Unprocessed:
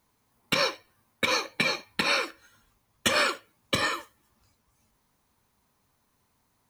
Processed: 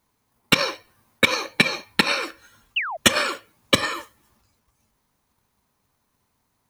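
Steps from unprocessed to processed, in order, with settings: painted sound fall, 2.76–2.97, 590–3100 Hz -29 dBFS; transient shaper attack +11 dB, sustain +7 dB; gain -1 dB

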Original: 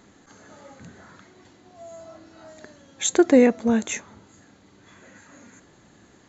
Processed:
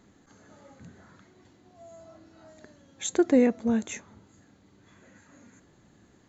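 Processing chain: low shelf 320 Hz +6.5 dB; gain -8.5 dB

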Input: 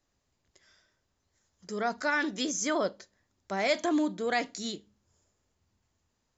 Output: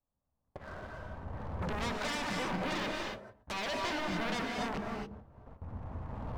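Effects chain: rattling part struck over -49 dBFS, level -21 dBFS; recorder AGC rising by 12 dB/s; LPF 1100 Hz 24 dB/oct; gate with hold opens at -59 dBFS; bell 360 Hz -14 dB 0.36 oct; compressor 10:1, threshold -43 dBFS, peak gain reduction 18 dB; sample leveller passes 2; sine folder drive 13 dB, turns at -32 dBFS; non-linear reverb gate 0.3 s rising, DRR 1 dB; gain -2 dB

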